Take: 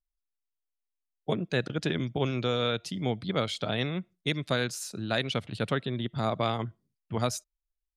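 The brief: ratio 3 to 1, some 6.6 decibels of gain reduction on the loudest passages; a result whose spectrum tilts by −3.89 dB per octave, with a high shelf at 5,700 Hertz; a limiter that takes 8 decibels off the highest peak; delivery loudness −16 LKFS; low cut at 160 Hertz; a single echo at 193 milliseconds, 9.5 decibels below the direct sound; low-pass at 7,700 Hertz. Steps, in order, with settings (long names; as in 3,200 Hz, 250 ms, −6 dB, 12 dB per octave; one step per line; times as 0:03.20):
high-pass filter 160 Hz
low-pass filter 7,700 Hz
high-shelf EQ 5,700 Hz +8.5 dB
downward compressor 3 to 1, threshold −32 dBFS
brickwall limiter −25.5 dBFS
single-tap delay 193 ms −9.5 dB
level +21.5 dB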